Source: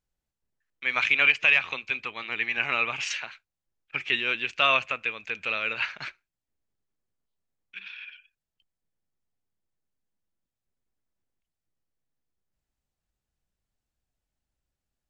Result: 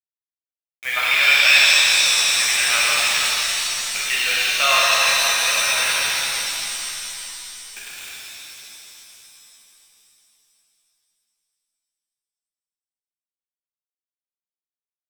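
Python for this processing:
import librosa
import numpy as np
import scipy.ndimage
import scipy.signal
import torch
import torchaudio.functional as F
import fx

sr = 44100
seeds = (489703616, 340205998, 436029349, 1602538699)

y = scipy.signal.sosfilt(scipy.signal.ellip(3, 1.0, 50, [570.0, 4500.0], 'bandpass', fs=sr, output='sos'), x)
y = fx.quant_dither(y, sr, seeds[0], bits=6, dither='none')
y = fx.rev_shimmer(y, sr, seeds[1], rt60_s=3.2, semitones=7, shimmer_db=-2, drr_db=-7.0)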